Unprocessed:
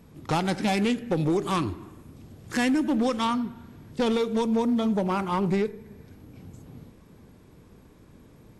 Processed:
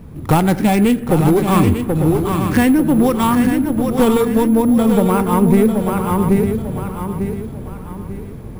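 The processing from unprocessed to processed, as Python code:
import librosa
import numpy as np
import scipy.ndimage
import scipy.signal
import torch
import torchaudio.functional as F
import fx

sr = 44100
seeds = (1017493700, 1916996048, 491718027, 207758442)

p1 = fx.high_shelf(x, sr, hz=3700.0, db=-11.0)
p2 = p1 + 10.0 ** (-8.5 / 20.0) * np.pad(p1, (int(779 * sr / 1000.0), 0))[:len(p1)]
p3 = fx.rider(p2, sr, range_db=10, speed_s=0.5)
p4 = p2 + (p3 * 10.0 ** (3.0 / 20.0))
p5 = fx.low_shelf(p4, sr, hz=120.0, db=11.0)
p6 = np.repeat(p5[::4], 4)[:len(p5)]
p7 = p6 + fx.echo_feedback(p6, sr, ms=896, feedback_pct=37, wet_db=-8.0, dry=0)
y = p7 * 10.0 ** (2.0 / 20.0)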